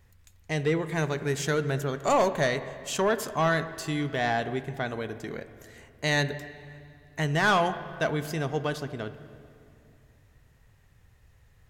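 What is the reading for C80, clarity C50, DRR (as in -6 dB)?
13.5 dB, 12.5 dB, 11.5 dB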